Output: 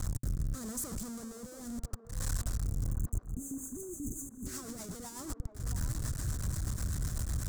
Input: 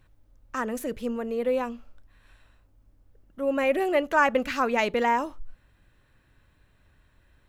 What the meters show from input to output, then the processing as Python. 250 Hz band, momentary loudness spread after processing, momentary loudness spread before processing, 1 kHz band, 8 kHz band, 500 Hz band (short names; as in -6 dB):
-9.0 dB, 7 LU, 11 LU, -24.0 dB, +9.0 dB, -23.0 dB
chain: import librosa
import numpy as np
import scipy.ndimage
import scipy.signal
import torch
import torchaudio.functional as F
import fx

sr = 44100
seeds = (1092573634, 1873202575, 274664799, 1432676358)

y = np.sign(x) * np.sqrt(np.mean(np.square(x)))
y = fx.highpass(y, sr, hz=43.0, slope=6)
y = fx.notch(y, sr, hz=900.0, q=11.0)
y = fx.spec_box(y, sr, start_s=2.92, length_s=1.54, low_hz=470.0, high_hz=6100.0, gain_db=-27)
y = fx.high_shelf(y, sr, hz=5600.0, db=-12.0)
y = fx.auto_swell(y, sr, attack_ms=228.0)
y = fx.rider(y, sr, range_db=3, speed_s=0.5)
y = fx.curve_eq(y, sr, hz=(120.0, 470.0, 1300.0, 2700.0, 7600.0, 11000.0), db=(0, -17, -13, -25, 8, 4))
y = fx.rotary_switch(y, sr, hz=0.8, then_hz=8.0, switch_at_s=2.94)
y = fx.echo_wet_bandpass(y, sr, ms=680, feedback_pct=49, hz=590.0, wet_db=-8.5)
y = y * librosa.db_to_amplitude(2.0)